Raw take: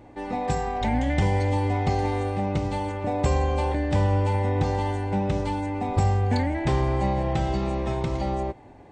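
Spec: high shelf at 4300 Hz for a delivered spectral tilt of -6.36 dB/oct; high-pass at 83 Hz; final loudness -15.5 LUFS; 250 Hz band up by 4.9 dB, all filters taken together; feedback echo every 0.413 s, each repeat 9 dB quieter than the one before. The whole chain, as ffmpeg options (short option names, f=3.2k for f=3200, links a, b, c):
-af "highpass=83,equalizer=f=250:t=o:g=6.5,highshelf=f=4.3k:g=-6.5,aecho=1:1:413|826|1239|1652:0.355|0.124|0.0435|0.0152,volume=8.5dB"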